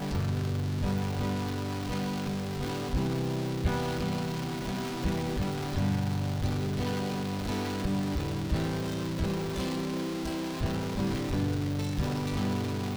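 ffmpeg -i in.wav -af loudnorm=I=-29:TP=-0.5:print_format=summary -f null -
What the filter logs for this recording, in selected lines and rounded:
Input Integrated:    -31.5 LUFS
Input True Peak:     -15.0 dBTP
Input LRA:             0.7 LU
Input Threshold:     -41.5 LUFS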